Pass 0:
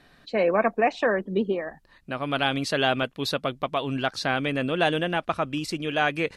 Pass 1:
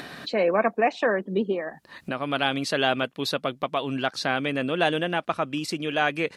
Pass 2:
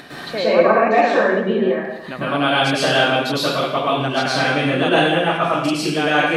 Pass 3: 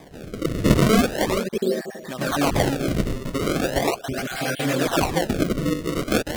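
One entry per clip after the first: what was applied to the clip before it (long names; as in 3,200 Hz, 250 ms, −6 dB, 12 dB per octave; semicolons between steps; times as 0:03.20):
high-pass filter 140 Hz 12 dB per octave; upward compression, threshold −25 dBFS
dense smooth reverb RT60 0.87 s, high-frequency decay 0.95×, pre-delay 95 ms, DRR −9 dB; level −1 dB
time-frequency cells dropped at random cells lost 34%; sample-and-hold swept by an LFO 31×, swing 160% 0.39 Hz; rotating-speaker cabinet horn 0.75 Hz; level −1 dB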